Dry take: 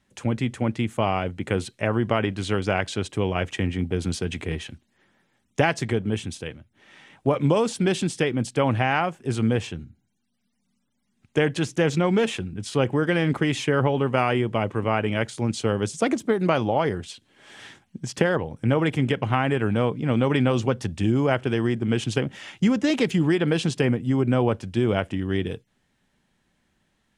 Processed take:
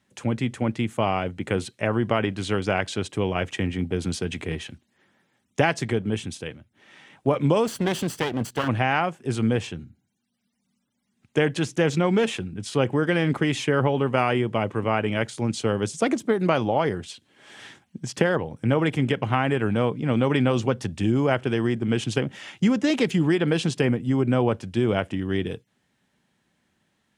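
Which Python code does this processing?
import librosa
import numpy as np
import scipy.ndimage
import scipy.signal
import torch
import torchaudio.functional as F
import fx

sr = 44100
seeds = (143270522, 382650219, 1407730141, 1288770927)

y = fx.lower_of_two(x, sr, delay_ms=0.65, at=(7.65, 8.67), fade=0.02)
y = scipy.signal.sosfilt(scipy.signal.butter(2, 87.0, 'highpass', fs=sr, output='sos'), y)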